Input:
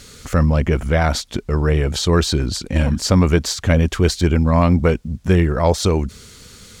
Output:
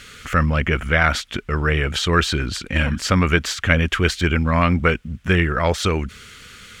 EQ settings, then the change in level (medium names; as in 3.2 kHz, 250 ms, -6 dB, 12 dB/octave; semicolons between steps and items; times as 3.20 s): high-order bell 2 kHz +11.5 dB; -4.0 dB